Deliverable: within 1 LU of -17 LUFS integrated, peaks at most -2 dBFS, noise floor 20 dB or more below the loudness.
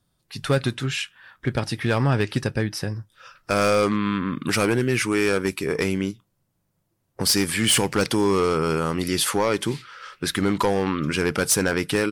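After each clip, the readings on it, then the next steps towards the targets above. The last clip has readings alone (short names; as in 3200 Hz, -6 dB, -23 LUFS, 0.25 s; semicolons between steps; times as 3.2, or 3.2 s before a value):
clipped 0.7%; flat tops at -13.5 dBFS; loudness -23.0 LUFS; peak -13.5 dBFS; loudness target -17.0 LUFS
-> clip repair -13.5 dBFS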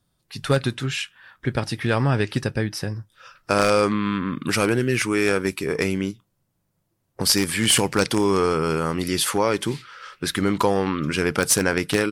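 clipped 0.0%; loudness -22.0 LUFS; peak -4.5 dBFS; loudness target -17.0 LUFS
-> gain +5 dB; limiter -2 dBFS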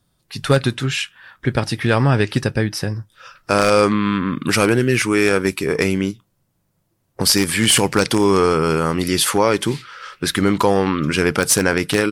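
loudness -17.5 LUFS; peak -2.0 dBFS; noise floor -67 dBFS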